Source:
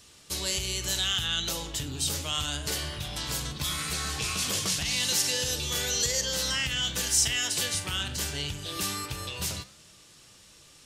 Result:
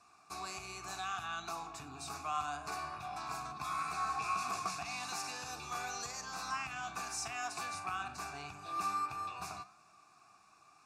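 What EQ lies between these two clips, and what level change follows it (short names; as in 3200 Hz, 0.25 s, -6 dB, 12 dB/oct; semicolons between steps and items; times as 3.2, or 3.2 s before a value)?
vowel filter a; fixed phaser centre 1300 Hz, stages 4; +13.5 dB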